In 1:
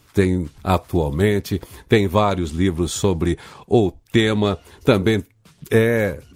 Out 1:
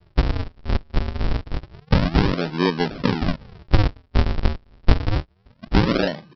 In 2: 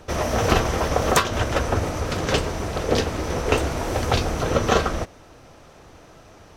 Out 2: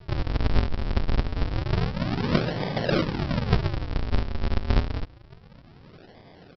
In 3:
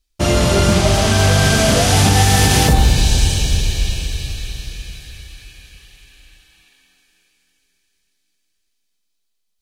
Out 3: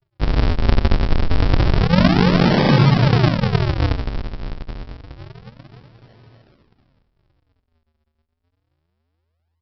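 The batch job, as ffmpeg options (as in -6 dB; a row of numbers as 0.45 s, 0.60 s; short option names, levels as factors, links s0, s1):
-af "afreqshift=82,aresample=11025,acrusher=samples=40:mix=1:aa=0.000001:lfo=1:lforange=64:lforate=0.28,aresample=44100,volume=0.841"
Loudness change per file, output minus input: -3.5 LU, -4.5 LU, -3.0 LU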